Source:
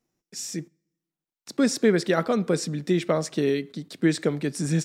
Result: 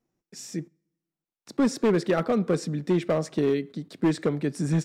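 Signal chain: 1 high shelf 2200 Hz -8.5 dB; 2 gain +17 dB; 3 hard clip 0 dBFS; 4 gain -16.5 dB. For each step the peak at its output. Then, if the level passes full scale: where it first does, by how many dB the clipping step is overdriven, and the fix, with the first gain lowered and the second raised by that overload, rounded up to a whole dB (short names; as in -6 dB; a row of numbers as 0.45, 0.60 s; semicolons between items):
-9.5, +7.5, 0.0, -16.5 dBFS; step 2, 7.5 dB; step 2 +9 dB, step 4 -8.5 dB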